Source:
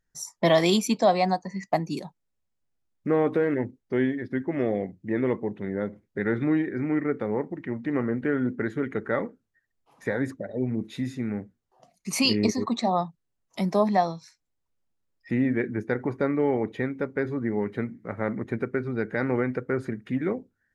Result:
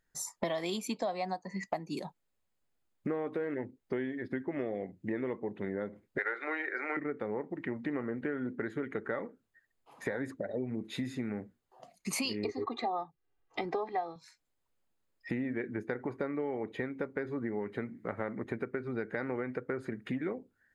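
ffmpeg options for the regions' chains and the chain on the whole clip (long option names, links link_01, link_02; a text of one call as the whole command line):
ffmpeg -i in.wav -filter_complex "[0:a]asettb=1/sr,asplit=3[link_01][link_02][link_03];[link_01]atrim=end=6.184[link_04];[link_02]atrim=start=6.18:end=6.97,asetpts=PTS-STARTPTS,afade=type=in:duration=0.004:curve=qsin,afade=type=out:start_time=0.786:duration=0.004:curve=qsin,bandreject=frequency=3400:width=7.9,acontrast=74,highpass=frequency=500:width=0.5412,highpass=frequency=500:width=1.3066,equalizer=frequency=1400:width_type=q:width=4:gain=8,equalizer=frequency=2100:width_type=q:width=4:gain=6,equalizer=frequency=4300:width_type=q:width=4:gain=6,lowpass=frequency=9100:width=0.5412,lowpass=frequency=9100:width=1.3066[link_05];[link_03]atrim=start=6.966[link_06];[link_04][link_05]acrossfade=duration=0.004:curve1=hsin:curve2=qsin[link_07];[link_07][link_06]acrossfade=duration=0.004:curve1=qsin:curve2=hsin,asettb=1/sr,asplit=3[link_08][link_09][link_10];[link_08]atrim=end=12.444[link_11];[link_09]atrim=start=12.44:end=14.16,asetpts=PTS-STARTPTS,afade=type=in:duration=0.004:curve=qsin,afade=type=out:start_time=1.716:duration=0.004:curve=qsin,lowpass=2900,aecho=1:1:2.5:0.88,atrim=end_sample=75852[link_12];[link_10]atrim=start=14.156[link_13];[link_11][link_12]acrossfade=duration=0.004:curve1=hsin:curve2=qsin[link_14];[link_14][link_13]acrossfade=duration=0.004:curve1=qsin:curve2=hsin,bass=frequency=250:gain=-6,treble=frequency=4000:gain=-2,bandreject=frequency=5700:width=7.5,acompressor=threshold=-36dB:ratio=6,volume=3.5dB" out.wav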